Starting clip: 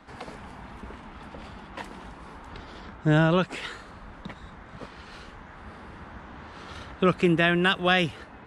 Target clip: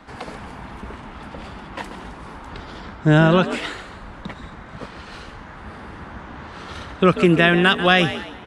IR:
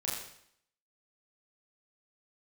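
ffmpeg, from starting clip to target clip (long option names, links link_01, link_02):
-filter_complex "[0:a]asplit=5[link_01][link_02][link_03][link_04][link_05];[link_02]adelay=138,afreqshift=61,volume=-12.5dB[link_06];[link_03]adelay=276,afreqshift=122,volume=-21.4dB[link_07];[link_04]adelay=414,afreqshift=183,volume=-30.2dB[link_08];[link_05]adelay=552,afreqshift=244,volume=-39.1dB[link_09];[link_01][link_06][link_07][link_08][link_09]amix=inputs=5:normalize=0,volume=6.5dB"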